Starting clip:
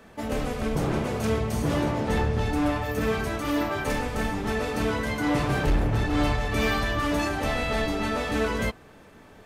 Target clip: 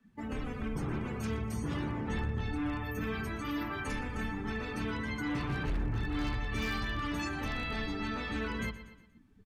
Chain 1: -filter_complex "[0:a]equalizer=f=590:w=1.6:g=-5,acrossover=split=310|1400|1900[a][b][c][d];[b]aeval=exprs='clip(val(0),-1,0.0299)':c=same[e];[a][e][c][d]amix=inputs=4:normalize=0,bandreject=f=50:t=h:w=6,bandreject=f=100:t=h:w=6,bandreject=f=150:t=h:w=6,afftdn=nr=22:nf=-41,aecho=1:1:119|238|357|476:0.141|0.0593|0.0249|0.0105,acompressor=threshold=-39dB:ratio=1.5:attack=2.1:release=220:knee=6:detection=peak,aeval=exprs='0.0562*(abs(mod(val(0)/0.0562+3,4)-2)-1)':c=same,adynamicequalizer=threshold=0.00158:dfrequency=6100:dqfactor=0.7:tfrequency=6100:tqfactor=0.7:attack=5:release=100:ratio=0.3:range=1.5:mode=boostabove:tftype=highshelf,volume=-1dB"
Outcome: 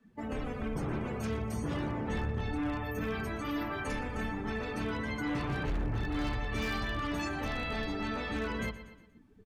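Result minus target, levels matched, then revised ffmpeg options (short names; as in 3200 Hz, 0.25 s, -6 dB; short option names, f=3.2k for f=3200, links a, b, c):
500 Hz band +3.0 dB
-filter_complex "[0:a]equalizer=f=590:w=1.6:g=-12,acrossover=split=310|1400|1900[a][b][c][d];[b]aeval=exprs='clip(val(0),-1,0.0299)':c=same[e];[a][e][c][d]amix=inputs=4:normalize=0,bandreject=f=50:t=h:w=6,bandreject=f=100:t=h:w=6,bandreject=f=150:t=h:w=6,afftdn=nr=22:nf=-41,aecho=1:1:119|238|357|476:0.141|0.0593|0.0249|0.0105,acompressor=threshold=-39dB:ratio=1.5:attack=2.1:release=220:knee=6:detection=peak,aeval=exprs='0.0562*(abs(mod(val(0)/0.0562+3,4)-2)-1)':c=same,adynamicequalizer=threshold=0.00158:dfrequency=6100:dqfactor=0.7:tfrequency=6100:tqfactor=0.7:attack=5:release=100:ratio=0.3:range=1.5:mode=boostabove:tftype=highshelf,volume=-1dB"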